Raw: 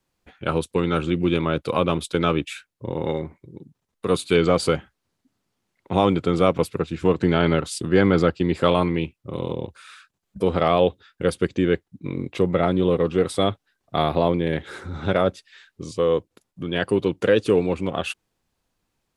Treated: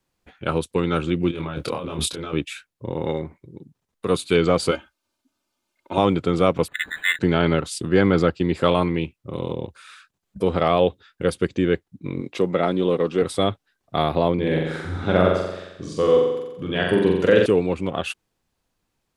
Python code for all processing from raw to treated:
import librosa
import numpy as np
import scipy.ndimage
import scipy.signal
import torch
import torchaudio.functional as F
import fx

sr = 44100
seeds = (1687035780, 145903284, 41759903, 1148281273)

y = fx.chain(x, sr, fx.over_compress(threshold_db=-30.0, ratio=-1.0),
    fx.doubler(ms=26.0, db=-3), at=(1.31, 2.33))
y = fx.chain(y, sr, fx.low_shelf(hz=310.0, db=-11.0),
    fx.notch(hz=1900.0, q=5.5),
    fx.comb(ms=3.3, depth=0.78), at=(4.71, 5.98))
y = fx.chain(y, sr, fx.freq_invert(carrier_hz=3900),
    fx.resample_linear(factor=8), at=(6.68, 7.19))
y = fx.chain(y, sr, fx.highpass(hz=180.0, slope=12),
    fx.peak_eq(hz=5400.0, db=4.0, octaves=0.87), at=(12.21, 13.22))
y = fx.chain(y, sr, fx.high_shelf(hz=9500.0, db=-8.5),
    fx.room_flutter(wall_m=7.6, rt60_s=0.98), at=(14.34, 17.46))